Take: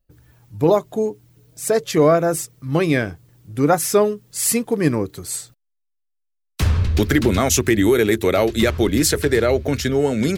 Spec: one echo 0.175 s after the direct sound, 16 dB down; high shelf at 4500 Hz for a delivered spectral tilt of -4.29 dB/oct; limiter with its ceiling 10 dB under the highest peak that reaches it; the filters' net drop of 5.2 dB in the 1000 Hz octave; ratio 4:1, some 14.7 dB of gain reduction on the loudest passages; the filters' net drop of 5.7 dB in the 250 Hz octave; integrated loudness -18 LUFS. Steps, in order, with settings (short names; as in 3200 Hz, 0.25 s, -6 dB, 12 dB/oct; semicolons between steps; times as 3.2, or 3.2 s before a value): bell 250 Hz -7.5 dB; bell 1000 Hz -7.5 dB; high shelf 4500 Hz +6 dB; compressor 4:1, threshold -29 dBFS; limiter -24.5 dBFS; echo 0.175 s -16 dB; gain +16 dB